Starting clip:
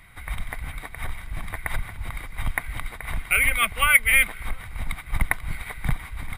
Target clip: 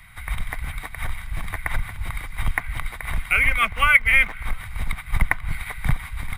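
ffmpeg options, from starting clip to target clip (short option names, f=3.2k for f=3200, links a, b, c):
-filter_complex "[0:a]acrossover=split=240|660|3000[a][b][c][d];[b]acrusher=bits=5:dc=4:mix=0:aa=0.000001[e];[d]acompressor=threshold=-42dB:ratio=6[f];[a][e][c][f]amix=inputs=4:normalize=0,volume=3.5dB"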